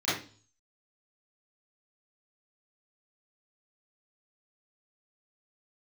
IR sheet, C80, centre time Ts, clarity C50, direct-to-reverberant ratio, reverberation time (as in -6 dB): 9.0 dB, 50 ms, 2.0 dB, -13.5 dB, 0.40 s